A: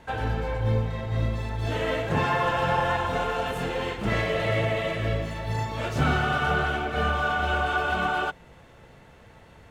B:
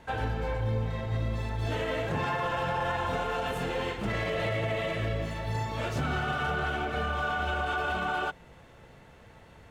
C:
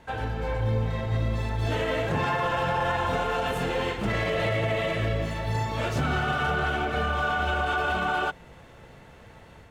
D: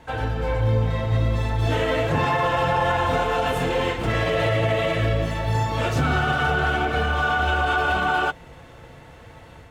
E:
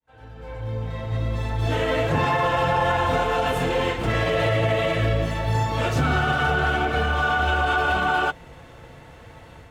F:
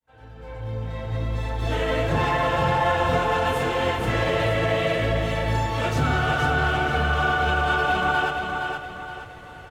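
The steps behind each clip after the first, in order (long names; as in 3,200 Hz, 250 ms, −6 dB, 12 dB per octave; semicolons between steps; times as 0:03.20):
brickwall limiter −19.5 dBFS, peak gain reduction 8 dB; level −2 dB
automatic gain control gain up to 4 dB
notch comb filter 200 Hz; level +5.5 dB
fade in at the beginning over 2.01 s
repeating echo 469 ms, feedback 39%, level −5 dB; level −1.5 dB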